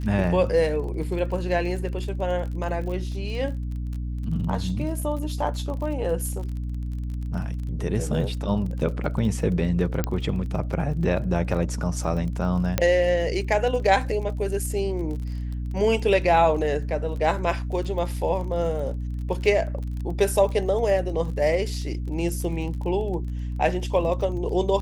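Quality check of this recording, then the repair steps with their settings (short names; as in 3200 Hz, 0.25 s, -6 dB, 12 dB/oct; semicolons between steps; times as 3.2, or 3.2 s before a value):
crackle 30/s -33 dBFS
hum 60 Hz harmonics 5 -29 dBFS
10.04 pop -10 dBFS
12.78 pop -6 dBFS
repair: de-click; de-hum 60 Hz, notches 5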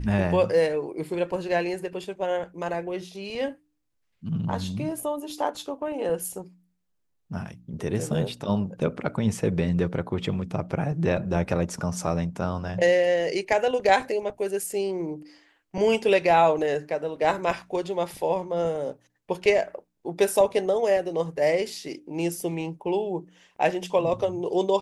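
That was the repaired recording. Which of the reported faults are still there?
none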